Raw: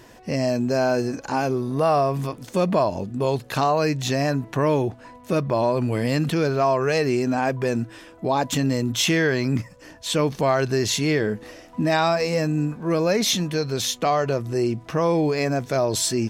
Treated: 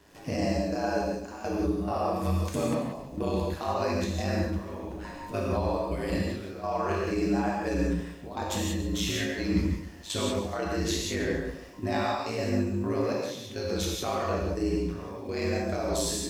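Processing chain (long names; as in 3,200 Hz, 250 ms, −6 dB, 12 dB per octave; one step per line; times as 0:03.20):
downward compressor 3 to 1, threshold −28 dBFS, peak gain reduction 9.5 dB
brickwall limiter −21.5 dBFS, peak gain reduction 4 dB
speech leveller within 4 dB 0.5 s
gate pattern ".xxx.xx...xx" 104 BPM −12 dB
surface crackle 390 per second −51 dBFS
ring modulation 52 Hz
tape wow and flutter 24 cents
0:06.66–0:07.11: double-tracking delay 33 ms −4 dB
reverb whose tail is shaped and stops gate 210 ms flat, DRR −3.5 dB
feedback echo at a low word length 140 ms, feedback 35%, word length 10 bits, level −13 dB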